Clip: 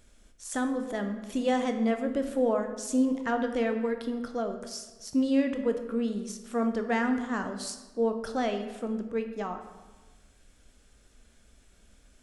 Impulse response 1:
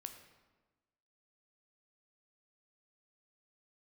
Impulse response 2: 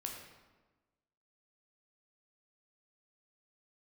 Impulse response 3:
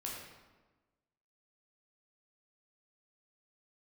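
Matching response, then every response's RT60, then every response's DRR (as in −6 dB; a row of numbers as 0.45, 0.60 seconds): 1; 1.2, 1.3, 1.3 seconds; 6.0, 0.5, −3.5 decibels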